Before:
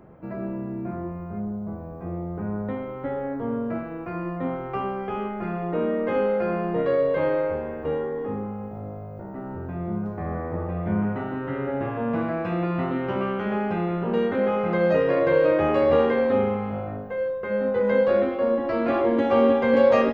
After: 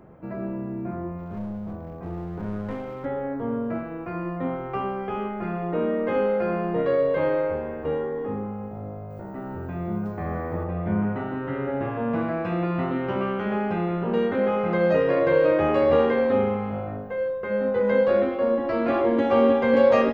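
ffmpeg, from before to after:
ffmpeg -i in.wav -filter_complex "[0:a]asplit=3[link_01][link_02][link_03];[link_01]afade=type=out:start_time=1.17:duration=0.02[link_04];[link_02]aeval=exprs='clip(val(0),-1,0.0237)':channel_layout=same,afade=type=in:start_time=1.17:duration=0.02,afade=type=out:start_time=3.04:duration=0.02[link_05];[link_03]afade=type=in:start_time=3.04:duration=0.02[link_06];[link_04][link_05][link_06]amix=inputs=3:normalize=0,asettb=1/sr,asplit=3[link_07][link_08][link_09];[link_07]atrim=end=9.104[link_10];[link_08]atrim=start=9.1:end=10.64,asetpts=PTS-STARTPTS,afade=type=in:duration=0.004:curve=qsin,afade=type=out:start_time=1.536:duration=0.004:curve=qsin,highshelf=frequency=2700:gain=9.5[link_11];[link_09]atrim=start=10.636[link_12];[link_10][link_11]acrossfade=duration=0.004:curve1=hsin:curve2=qsin[link_13];[link_13][link_12]acrossfade=duration=0.004:curve1=qsin:curve2=hsin" out.wav

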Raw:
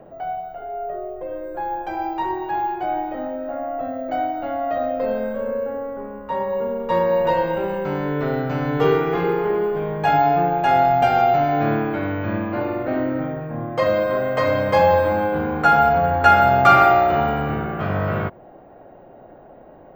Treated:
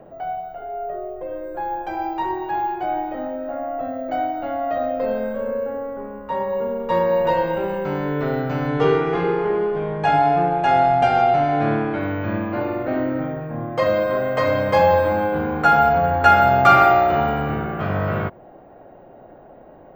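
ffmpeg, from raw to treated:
ffmpeg -i in.wav -filter_complex "[0:a]asettb=1/sr,asplit=3[link_01][link_02][link_03];[link_01]atrim=end=8.674[link_04];[link_02]atrim=start=8.67:end=12,asetpts=PTS-STARTPTS,afade=type=in:duration=0.004:curve=qsin,afade=type=out:start_time=3.326:duration=0.004:curve=qsin,lowpass=8600[link_05];[link_03]atrim=start=11.996[link_06];[link_04][link_05]acrossfade=duration=0.004:curve1=hsin:curve2=qsin[link_07];[link_07][link_06]acrossfade=duration=0.004:curve1=qsin:curve2=hsin" out.wav

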